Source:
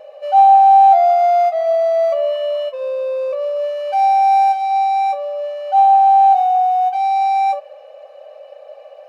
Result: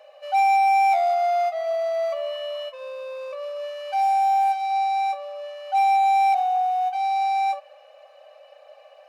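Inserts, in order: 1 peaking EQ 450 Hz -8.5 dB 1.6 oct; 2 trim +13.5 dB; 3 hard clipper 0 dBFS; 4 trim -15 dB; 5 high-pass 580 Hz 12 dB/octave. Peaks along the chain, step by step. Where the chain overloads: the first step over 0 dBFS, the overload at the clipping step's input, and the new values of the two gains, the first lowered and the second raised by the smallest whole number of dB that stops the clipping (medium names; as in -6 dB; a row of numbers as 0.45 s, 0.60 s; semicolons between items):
-7.5 dBFS, +6.0 dBFS, 0.0 dBFS, -15.0 dBFS, -12.0 dBFS; step 2, 6.0 dB; step 2 +7.5 dB, step 4 -9 dB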